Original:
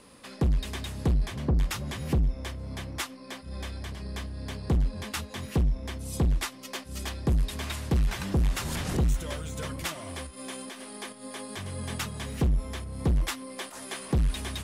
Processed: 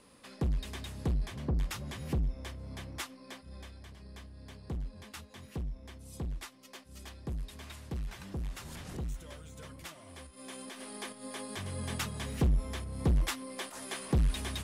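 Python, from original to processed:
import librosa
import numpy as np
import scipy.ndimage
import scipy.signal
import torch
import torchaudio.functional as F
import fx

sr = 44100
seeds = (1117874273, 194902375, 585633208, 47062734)

y = fx.gain(x, sr, db=fx.line((3.3, -6.5), (3.75, -13.0), (10.06, -13.0), (10.85, -2.5)))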